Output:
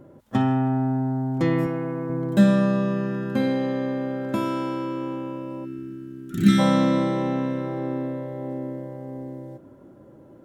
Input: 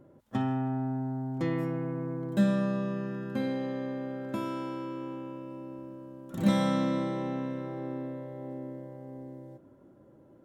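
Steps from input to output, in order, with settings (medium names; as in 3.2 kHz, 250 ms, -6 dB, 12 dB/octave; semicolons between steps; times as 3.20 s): 1.66–2.10 s: bass shelf 200 Hz -9 dB; 5.65–6.59 s: time-frequency box 460–1200 Hz -26 dB; trim +8.5 dB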